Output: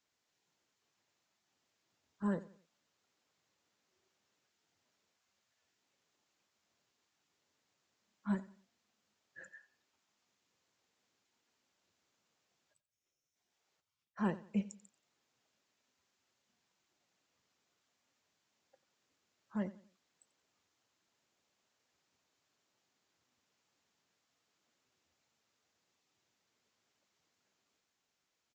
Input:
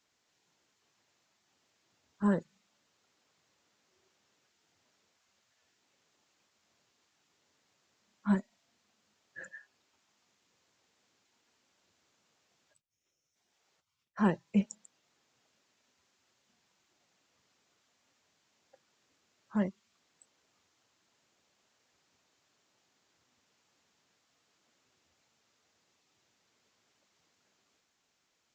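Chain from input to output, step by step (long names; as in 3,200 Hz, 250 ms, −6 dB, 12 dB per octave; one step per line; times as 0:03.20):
repeating echo 89 ms, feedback 35%, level −18 dB
level −7 dB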